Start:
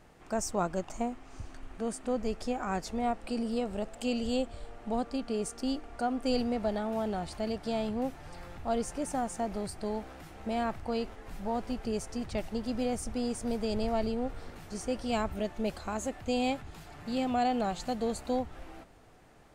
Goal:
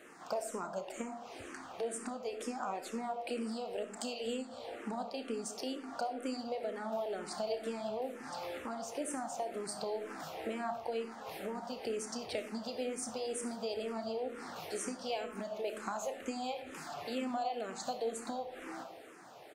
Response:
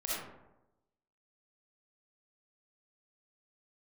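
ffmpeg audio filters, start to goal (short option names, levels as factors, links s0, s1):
-filter_complex "[0:a]highpass=320,acompressor=threshold=0.00794:ratio=6,asplit=2[s0][s1];[s1]adelay=31,volume=0.266[s2];[s0][s2]amix=inputs=2:normalize=0,asplit=2[s3][s4];[1:a]atrim=start_sample=2205[s5];[s4][s5]afir=irnorm=-1:irlink=0,volume=0.335[s6];[s3][s6]amix=inputs=2:normalize=0,asplit=2[s7][s8];[s8]afreqshift=-2.1[s9];[s7][s9]amix=inputs=2:normalize=1,volume=2.24"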